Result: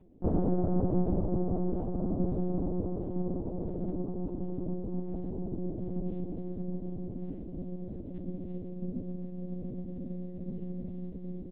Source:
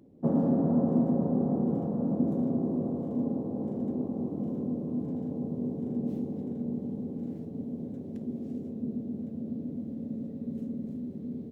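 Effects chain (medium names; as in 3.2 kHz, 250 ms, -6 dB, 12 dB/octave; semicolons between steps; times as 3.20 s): monotone LPC vocoder at 8 kHz 180 Hz; trim -1.5 dB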